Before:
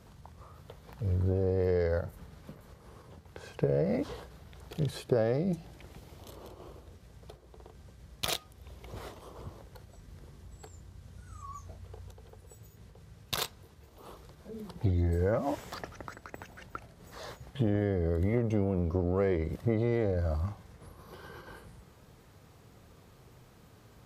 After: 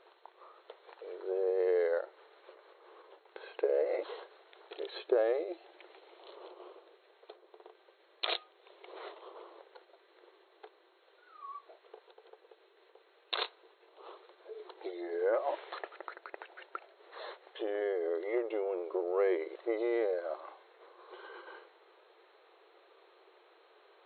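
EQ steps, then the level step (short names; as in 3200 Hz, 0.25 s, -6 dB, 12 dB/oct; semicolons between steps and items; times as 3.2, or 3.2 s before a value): brick-wall FIR band-pass 330–4300 Hz; 0.0 dB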